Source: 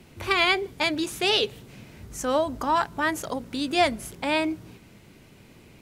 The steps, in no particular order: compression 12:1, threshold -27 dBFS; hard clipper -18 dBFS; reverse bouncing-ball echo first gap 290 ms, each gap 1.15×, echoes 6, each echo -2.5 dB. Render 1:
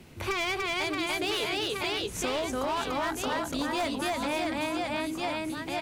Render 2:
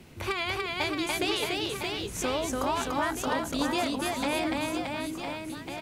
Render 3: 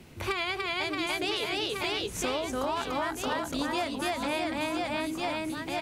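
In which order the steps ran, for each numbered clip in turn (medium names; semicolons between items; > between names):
reverse bouncing-ball echo > hard clipper > compression; compression > reverse bouncing-ball echo > hard clipper; reverse bouncing-ball echo > compression > hard clipper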